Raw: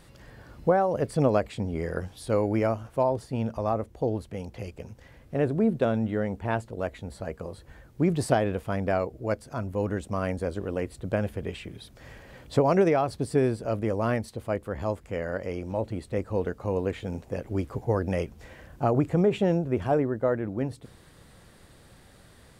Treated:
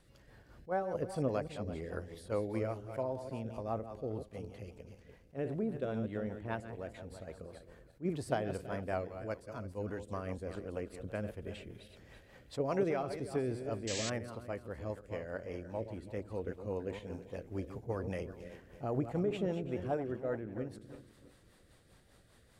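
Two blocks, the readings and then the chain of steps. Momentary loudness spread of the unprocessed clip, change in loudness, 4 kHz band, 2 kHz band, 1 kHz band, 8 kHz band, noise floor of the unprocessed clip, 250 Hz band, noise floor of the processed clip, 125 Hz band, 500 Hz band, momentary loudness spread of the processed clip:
13 LU, -11.0 dB, -5.0 dB, -10.0 dB, -12.0 dB, -3.5 dB, -54 dBFS, -11.0 dB, -63 dBFS, -11.5 dB, -10.5 dB, 13 LU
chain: regenerating reverse delay 0.165 s, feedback 52%, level -9 dB; bell 160 Hz -2.5 dB 1.7 oct; rotary speaker horn 5 Hz; painted sound noise, 13.87–14.1, 1600–8100 Hz -31 dBFS; attack slew limiter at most 390 dB/s; gain -8.5 dB

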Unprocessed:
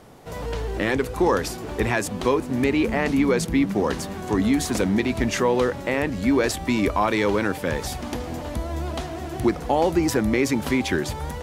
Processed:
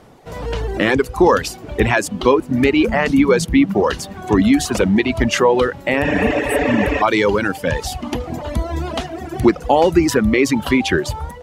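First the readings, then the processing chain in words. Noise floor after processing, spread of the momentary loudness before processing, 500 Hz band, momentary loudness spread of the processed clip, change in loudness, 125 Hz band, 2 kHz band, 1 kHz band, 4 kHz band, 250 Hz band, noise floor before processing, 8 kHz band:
-36 dBFS, 9 LU, +6.5 dB, 11 LU, +6.5 dB, +5.0 dB, +7.5 dB, +6.5 dB, +6.5 dB, +6.0 dB, -34 dBFS, +4.0 dB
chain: high shelf 7300 Hz -6.5 dB; AGC gain up to 6.5 dB; spectral repair 6.07–6.99, 250–7900 Hz before; dynamic EQ 2900 Hz, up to +5 dB, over -46 dBFS, Q 7; reverb removal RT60 1.8 s; gain +2.5 dB

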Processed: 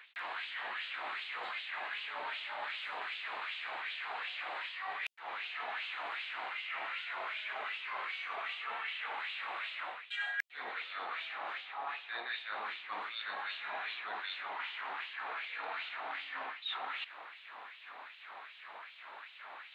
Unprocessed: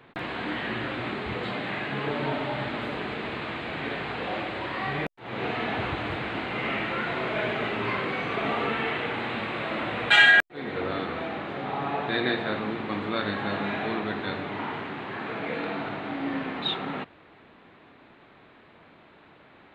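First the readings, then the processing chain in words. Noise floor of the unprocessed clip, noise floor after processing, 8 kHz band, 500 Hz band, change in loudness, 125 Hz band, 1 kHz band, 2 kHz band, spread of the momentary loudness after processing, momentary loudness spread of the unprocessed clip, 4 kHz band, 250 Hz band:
-54 dBFS, -54 dBFS, n/a, -19.5 dB, -12.0 dB, under -40 dB, -9.5 dB, -11.5 dB, 11 LU, 6 LU, -9.5 dB, -33.5 dB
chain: LFO high-pass sine 2.6 Hz 790–3100 Hz; reverse; compressor 6:1, threshold -42 dBFS, peak gain reduction 31 dB; reverse; gain +3 dB

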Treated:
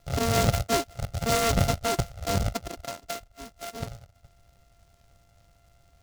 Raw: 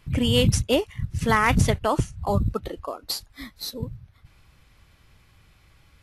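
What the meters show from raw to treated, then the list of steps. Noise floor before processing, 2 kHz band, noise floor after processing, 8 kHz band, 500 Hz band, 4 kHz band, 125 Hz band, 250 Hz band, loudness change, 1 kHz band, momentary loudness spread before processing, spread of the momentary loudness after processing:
-59 dBFS, -5.5 dB, -62 dBFS, +1.0 dB, -3.0 dB, -4.5 dB, -4.0 dB, -6.0 dB, -3.5 dB, -3.0 dB, 15 LU, 15 LU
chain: sample sorter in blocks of 64 samples; high shelf 4600 Hz -5.5 dB; noise-modulated delay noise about 4200 Hz, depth 0.075 ms; gain -3.5 dB

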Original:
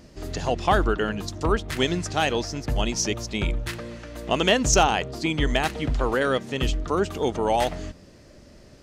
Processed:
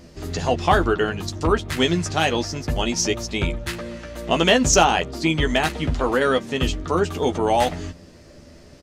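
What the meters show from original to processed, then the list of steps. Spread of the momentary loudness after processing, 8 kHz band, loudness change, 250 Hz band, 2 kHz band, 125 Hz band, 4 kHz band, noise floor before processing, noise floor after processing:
11 LU, +3.5 dB, +3.5 dB, +4.0 dB, +3.5 dB, +3.0 dB, +3.5 dB, -50 dBFS, -46 dBFS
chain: doubler 12 ms -5.5 dB; gain +2.5 dB

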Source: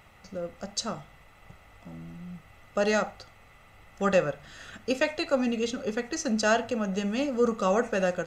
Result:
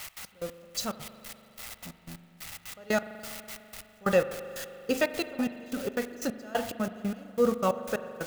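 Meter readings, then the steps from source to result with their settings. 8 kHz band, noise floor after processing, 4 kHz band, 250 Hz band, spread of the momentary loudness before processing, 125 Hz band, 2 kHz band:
-2.5 dB, -58 dBFS, -3.0 dB, -3.0 dB, 18 LU, -3.5 dB, -4.0 dB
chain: switching spikes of -25 dBFS; step gate "x.x..x...x" 181 bpm -24 dB; high shelf 4200 Hz -7 dB; spring tank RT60 3.1 s, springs 41 ms, chirp 35 ms, DRR 11.5 dB

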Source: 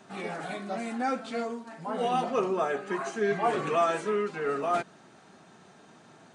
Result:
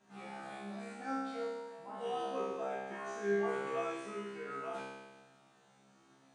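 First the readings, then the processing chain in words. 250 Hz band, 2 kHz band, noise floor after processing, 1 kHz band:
-9.0 dB, -8.5 dB, -66 dBFS, -11.5 dB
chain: resonator 67 Hz, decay 1.3 s, harmonics all, mix 100%; gain +4 dB

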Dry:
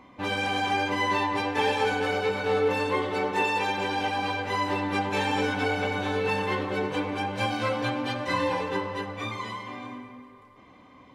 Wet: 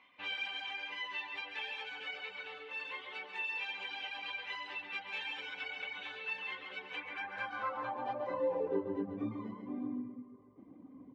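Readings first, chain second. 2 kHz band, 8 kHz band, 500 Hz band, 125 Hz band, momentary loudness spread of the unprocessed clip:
-10.0 dB, under -20 dB, -13.5 dB, -21.0 dB, 8 LU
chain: reverb removal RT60 0.86 s; echo 0.138 s -8 dB; compressor 2.5:1, threshold -29 dBFS, peak gain reduction 6.5 dB; low shelf 140 Hz +7 dB; vocal rider within 3 dB 0.5 s; band-pass sweep 2800 Hz -> 270 Hz, 6.84–9.11; high shelf 5100 Hz -9.5 dB; gain +1 dB

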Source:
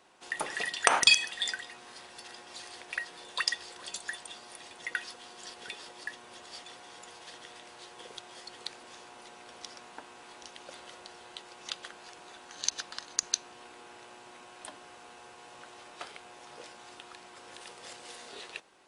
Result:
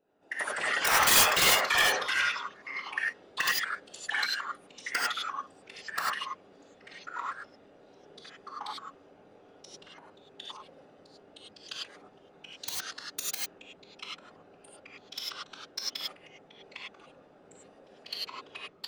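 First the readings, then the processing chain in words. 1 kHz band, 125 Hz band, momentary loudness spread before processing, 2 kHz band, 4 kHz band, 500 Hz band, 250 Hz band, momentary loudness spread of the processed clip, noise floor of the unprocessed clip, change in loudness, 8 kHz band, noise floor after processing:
+6.0 dB, +9.5 dB, 19 LU, +5.5 dB, +2.0 dB, +5.0 dB, +4.0 dB, 22 LU, -52 dBFS, +3.0 dB, +3.0 dB, -58 dBFS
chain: Wiener smoothing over 41 samples; HPF 300 Hz 12 dB/oct; dynamic EQ 2100 Hz, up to +7 dB, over -48 dBFS, Q 0.75; soft clip -12 dBFS, distortion -10 dB; echoes that change speed 95 ms, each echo -3 st, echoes 3; wrapped overs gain 14.5 dB; whisperiser; non-linear reverb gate 0.12 s rising, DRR -4 dB; gain -5 dB

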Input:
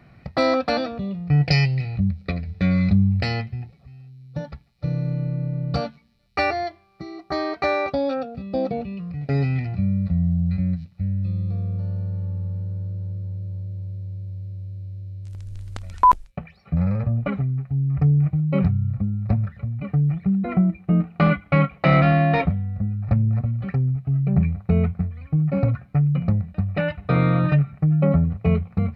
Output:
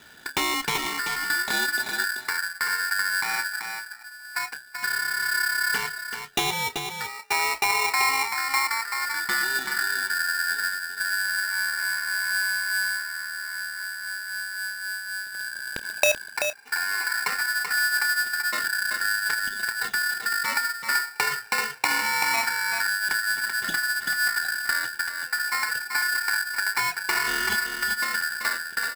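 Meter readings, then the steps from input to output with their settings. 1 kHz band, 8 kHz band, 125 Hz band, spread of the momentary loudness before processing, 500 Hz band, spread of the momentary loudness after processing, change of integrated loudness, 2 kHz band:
-1.5 dB, n/a, under -30 dB, 15 LU, -11.0 dB, 9 LU, -2.5 dB, +12.0 dB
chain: bell 340 Hz -3 dB; notches 60/120 Hz; compressor 10:1, threshold -24 dBFS, peak gain reduction 14 dB; LFO low-pass square 0.22 Hz 870–2100 Hz; vibrato 3.7 Hz 18 cents; doubler 29 ms -13.5 dB; echo 0.384 s -6.5 dB; polarity switched at an audio rate 1600 Hz

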